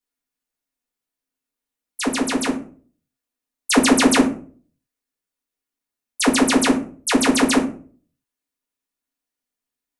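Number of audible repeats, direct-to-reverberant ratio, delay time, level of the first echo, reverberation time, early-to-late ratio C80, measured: none, -4.0 dB, none, none, 0.45 s, 15.0 dB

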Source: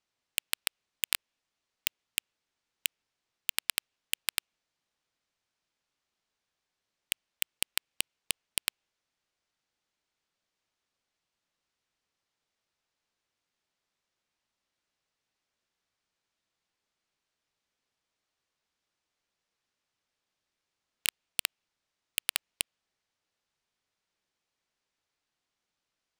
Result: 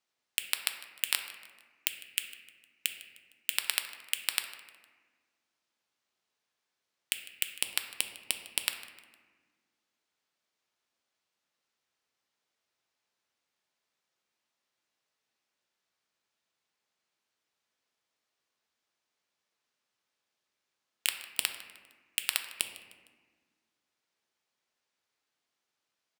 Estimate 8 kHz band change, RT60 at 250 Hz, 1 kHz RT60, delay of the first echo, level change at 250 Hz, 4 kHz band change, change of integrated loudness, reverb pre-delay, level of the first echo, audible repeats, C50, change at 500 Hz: +0.5 dB, 2.2 s, 1.4 s, 0.153 s, -1.5 dB, +0.5 dB, +0.5 dB, 5 ms, -19.5 dB, 3, 8.0 dB, +0.5 dB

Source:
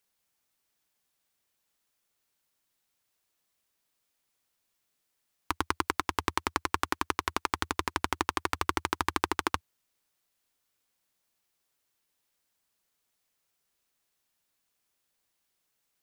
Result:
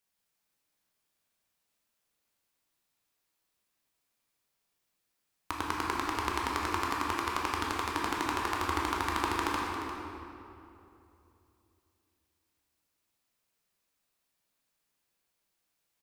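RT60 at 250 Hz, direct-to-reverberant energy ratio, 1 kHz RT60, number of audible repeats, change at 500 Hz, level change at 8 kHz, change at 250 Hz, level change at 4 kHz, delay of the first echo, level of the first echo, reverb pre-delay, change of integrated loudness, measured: 3.4 s, -3.5 dB, 2.7 s, 1, -0.5 dB, -2.5 dB, +1.0 dB, -1.5 dB, 0.35 s, -11.0 dB, 12 ms, -1.0 dB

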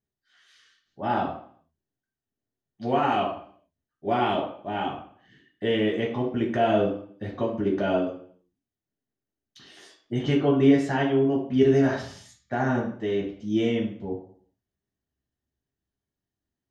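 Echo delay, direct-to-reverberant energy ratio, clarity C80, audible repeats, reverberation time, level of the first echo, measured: none, -3.5 dB, 9.5 dB, none, 0.55 s, none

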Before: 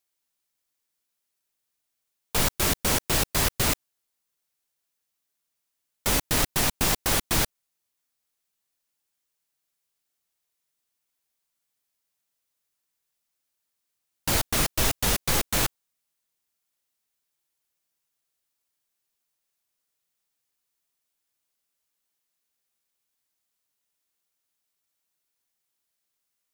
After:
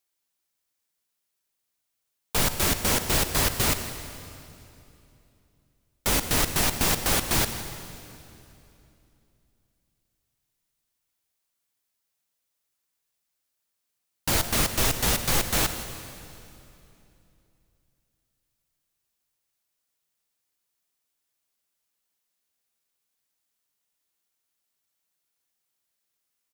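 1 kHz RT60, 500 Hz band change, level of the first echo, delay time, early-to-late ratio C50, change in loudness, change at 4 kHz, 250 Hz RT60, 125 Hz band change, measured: 2.7 s, +0.5 dB, -17.0 dB, 0.165 s, 8.5 dB, +0.5 dB, +0.5 dB, 3.4 s, +1.0 dB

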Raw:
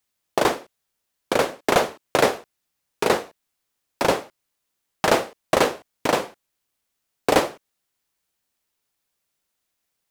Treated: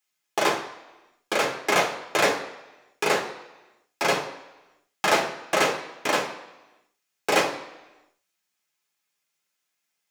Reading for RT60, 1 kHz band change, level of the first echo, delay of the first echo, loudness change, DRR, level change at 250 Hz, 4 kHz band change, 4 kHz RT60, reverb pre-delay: 1.0 s, -2.0 dB, none, none, -2.0 dB, -2.0 dB, -5.5 dB, +0.5 dB, 0.95 s, 3 ms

